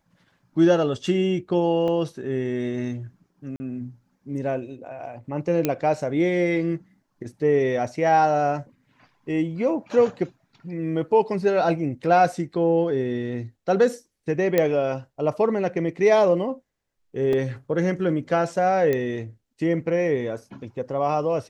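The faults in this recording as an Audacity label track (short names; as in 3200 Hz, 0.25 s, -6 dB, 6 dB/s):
1.880000	1.880000	gap 2.4 ms
3.560000	3.600000	gap 40 ms
5.650000	5.650000	pop -8 dBFS
14.580000	14.580000	pop -7 dBFS
17.330000	17.330000	gap 3 ms
18.930000	18.930000	pop -13 dBFS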